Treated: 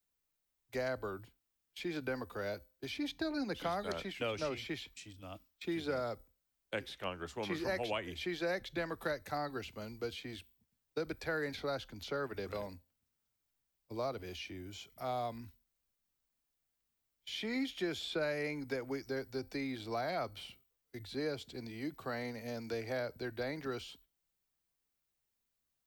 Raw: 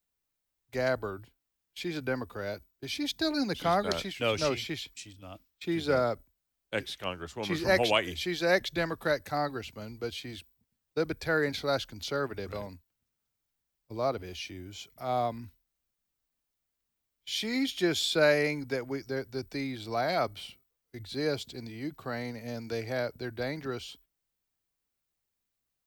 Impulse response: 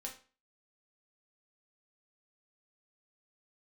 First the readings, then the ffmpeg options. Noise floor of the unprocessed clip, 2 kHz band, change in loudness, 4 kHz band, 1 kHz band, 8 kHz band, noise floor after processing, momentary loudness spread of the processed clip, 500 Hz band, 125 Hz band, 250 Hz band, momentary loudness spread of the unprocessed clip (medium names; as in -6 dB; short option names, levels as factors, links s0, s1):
-84 dBFS, -8.5 dB, -8.0 dB, -9.5 dB, -8.0 dB, -11.5 dB, -85 dBFS, 12 LU, -8.0 dB, -8.0 dB, -6.5 dB, 16 LU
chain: -filter_complex "[0:a]acrossover=split=86|210|2700[s0][s1][s2][s3];[s0]acompressor=threshold=0.002:ratio=4[s4];[s1]acompressor=threshold=0.00251:ratio=4[s5];[s2]acompressor=threshold=0.0224:ratio=4[s6];[s3]acompressor=threshold=0.00316:ratio=4[s7];[s4][s5][s6][s7]amix=inputs=4:normalize=0,asplit=2[s8][s9];[1:a]atrim=start_sample=2205,highshelf=f=5000:g=9[s10];[s9][s10]afir=irnorm=-1:irlink=0,volume=0.133[s11];[s8][s11]amix=inputs=2:normalize=0,volume=0.75"